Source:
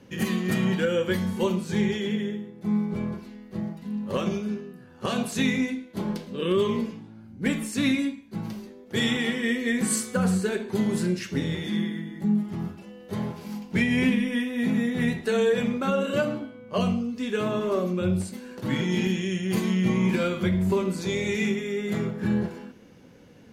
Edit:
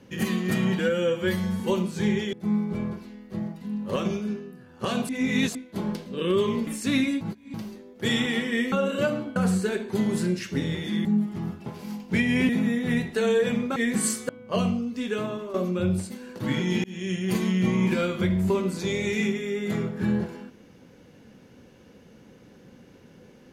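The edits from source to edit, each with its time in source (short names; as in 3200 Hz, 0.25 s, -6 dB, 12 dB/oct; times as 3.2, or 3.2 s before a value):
0.79–1.33 stretch 1.5×
2.06–2.54 cut
5.3–5.76 reverse
6.88–7.58 cut
8.12–8.45 reverse
9.63–10.16 swap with 15.87–16.51
11.85–12.22 cut
12.83–13.28 cut
14.11–14.6 cut
17.27–17.76 fade out, to -13 dB
19.06–19.34 fade in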